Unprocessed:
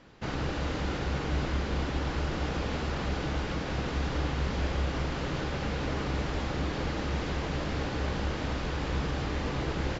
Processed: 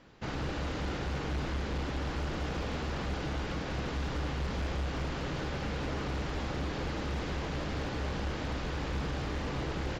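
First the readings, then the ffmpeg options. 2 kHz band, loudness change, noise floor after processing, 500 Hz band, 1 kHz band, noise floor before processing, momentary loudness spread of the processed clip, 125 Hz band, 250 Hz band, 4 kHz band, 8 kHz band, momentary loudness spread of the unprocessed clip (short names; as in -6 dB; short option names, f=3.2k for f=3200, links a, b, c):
-3.0 dB, -3.5 dB, -37 dBFS, -3.0 dB, -3.0 dB, -35 dBFS, 1 LU, -3.5 dB, -3.5 dB, -3.0 dB, n/a, 2 LU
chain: -af "asoftclip=type=hard:threshold=-26.5dB,volume=-2.5dB"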